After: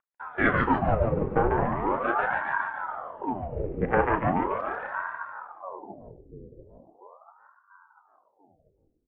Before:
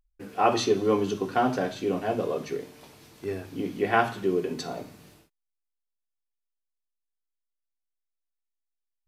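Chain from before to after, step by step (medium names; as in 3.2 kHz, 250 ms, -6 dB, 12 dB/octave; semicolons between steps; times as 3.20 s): local Wiener filter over 25 samples; in parallel at -1 dB: compression, threshold -38 dBFS, peak gain reduction 20 dB; on the sum: doubling 35 ms -13 dB; on a send: two-band feedback delay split 350 Hz, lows 691 ms, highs 144 ms, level -3 dB; on the sum: mistuned SSB -86 Hz 160–2200 Hz; ring modulator with a swept carrier 710 Hz, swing 80%, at 0.39 Hz; trim +1 dB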